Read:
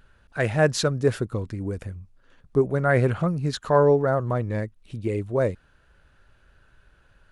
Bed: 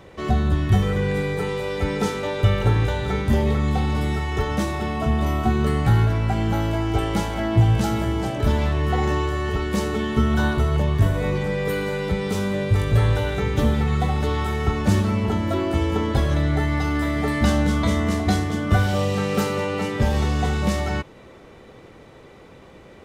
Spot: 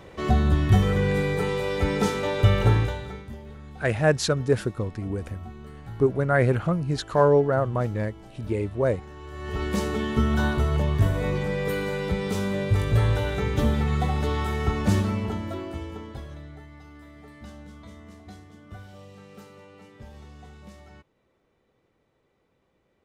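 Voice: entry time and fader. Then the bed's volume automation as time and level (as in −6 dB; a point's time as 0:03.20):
3.45 s, −0.5 dB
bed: 0:02.74 −0.5 dB
0:03.38 −22 dB
0:09.14 −22 dB
0:09.63 −3 dB
0:14.99 −3 dB
0:16.70 −24.5 dB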